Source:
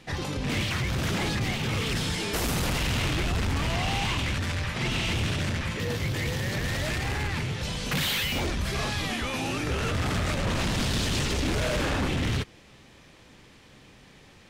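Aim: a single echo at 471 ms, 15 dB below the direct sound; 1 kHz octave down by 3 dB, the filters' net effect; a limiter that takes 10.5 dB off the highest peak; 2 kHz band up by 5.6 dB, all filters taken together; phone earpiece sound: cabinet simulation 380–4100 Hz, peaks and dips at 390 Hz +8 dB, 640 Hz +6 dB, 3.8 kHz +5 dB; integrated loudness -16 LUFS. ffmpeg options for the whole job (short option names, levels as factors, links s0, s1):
-af "equalizer=f=1000:t=o:g=-8.5,equalizer=f=2000:t=o:g=8.5,alimiter=level_in=1.26:limit=0.0631:level=0:latency=1,volume=0.794,highpass=380,equalizer=f=390:t=q:w=4:g=8,equalizer=f=640:t=q:w=4:g=6,equalizer=f=3800:t=q:w=4:g=5,lowpass=f=4100:w=0.5412,lowpass=f=4100:w=1.3066,aecho=1:1:471:0.178,volume=7.08"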